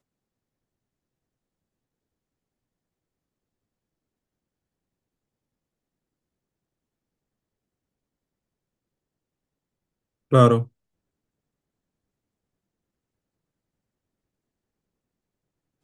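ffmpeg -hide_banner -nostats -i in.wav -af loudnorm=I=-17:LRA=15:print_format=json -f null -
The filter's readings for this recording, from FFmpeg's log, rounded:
"input_i" : "-18.6",
"input_tp" : "-2.8",
"input_lra" : "0.0",
"input_thresh" : "-29.2",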